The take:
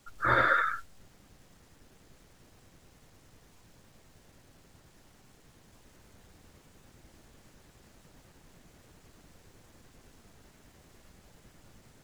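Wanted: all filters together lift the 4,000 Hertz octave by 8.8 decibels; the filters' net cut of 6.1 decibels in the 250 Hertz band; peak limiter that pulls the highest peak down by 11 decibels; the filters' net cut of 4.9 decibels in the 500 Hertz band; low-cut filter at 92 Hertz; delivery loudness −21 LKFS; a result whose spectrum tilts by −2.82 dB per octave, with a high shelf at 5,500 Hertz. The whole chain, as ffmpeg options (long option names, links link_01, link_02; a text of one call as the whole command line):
ffmpeg -i in.wav -af "highpass=92,equalizer=frequency=250:width_type=o:gain=-7,equalizer=frequency=500:width_type=o:gain=-4.5,equalizer=frequency=4000:width_type=o:gain=7.5,highshelf=frequency=5500:gain=7.5,volume=11.5dB,alimiter=limit=-12dB:level=0:latency=1" out.wav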